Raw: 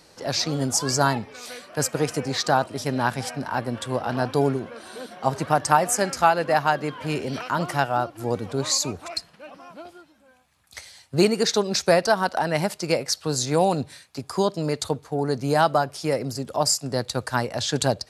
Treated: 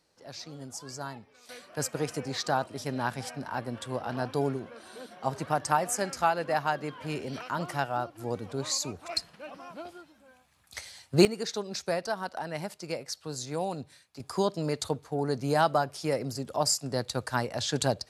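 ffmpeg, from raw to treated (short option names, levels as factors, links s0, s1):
-af "asetnsamples=n=441:p=0,asendcmd='1.49 volume volume -7.5dB;9.09 volume volume -1dB;11.25 volume volume -12dB;14.2 volume volume -5dB',volume=0.126"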